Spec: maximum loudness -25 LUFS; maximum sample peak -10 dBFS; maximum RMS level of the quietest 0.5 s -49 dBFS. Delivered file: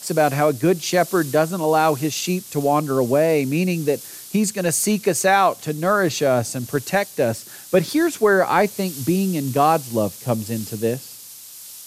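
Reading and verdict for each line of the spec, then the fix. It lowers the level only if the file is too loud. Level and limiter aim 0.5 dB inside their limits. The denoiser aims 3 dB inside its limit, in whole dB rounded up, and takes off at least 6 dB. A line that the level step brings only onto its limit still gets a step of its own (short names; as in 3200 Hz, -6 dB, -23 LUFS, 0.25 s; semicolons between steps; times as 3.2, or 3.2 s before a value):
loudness -20.0 LUFS: fail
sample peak -4.0 dBFS: fail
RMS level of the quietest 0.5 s -40 dBFS: fail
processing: denoiser 7 dB, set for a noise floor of -40 dBFS; gain -5.5 dB; limiter -10.5 dBFS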